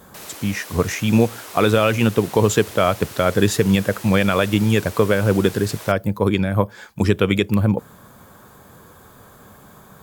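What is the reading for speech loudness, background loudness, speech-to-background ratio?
-19.0 LUFS, -35.5 LUFS, 16.5 dB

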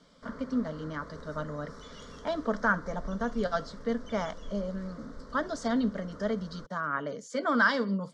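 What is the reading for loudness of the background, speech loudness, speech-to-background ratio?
-48.5 LUFS, -32.0 LUFS, 16.5 dB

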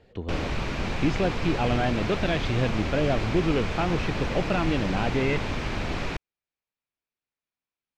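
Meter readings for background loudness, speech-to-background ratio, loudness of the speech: -30.5 LUFS, 3.0 dB, -27.5 LUFS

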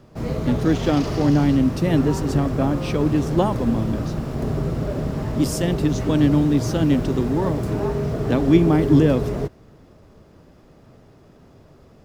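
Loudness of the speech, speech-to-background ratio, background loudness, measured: -21.0 LUFS, 4.5 dB, -25.5 LUFS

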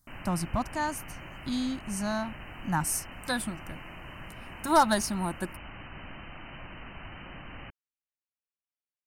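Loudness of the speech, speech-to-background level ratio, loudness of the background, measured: -30.5 LUFS, 14.0 dB, -44.5 LUFS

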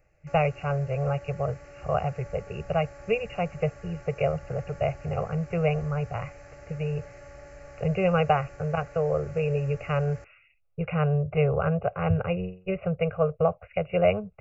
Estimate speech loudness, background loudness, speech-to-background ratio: -28.0 LUFS, -47.0 LUFS, 19.0 dB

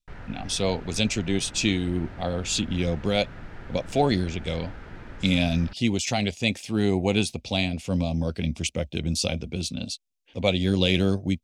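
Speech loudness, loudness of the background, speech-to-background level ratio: -26.0 LUFS, -43.5 LUFS, 17.5 dB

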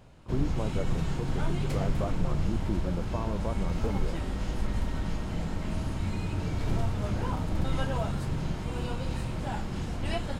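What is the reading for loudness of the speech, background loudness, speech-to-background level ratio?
-36.0 LUFS, -33.0 LUFS, -3.0 dB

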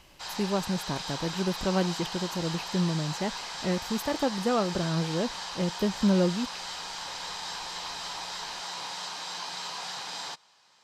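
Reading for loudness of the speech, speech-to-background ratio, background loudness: -30.0 LUFS, 5.5 dB, -35.5 LUFS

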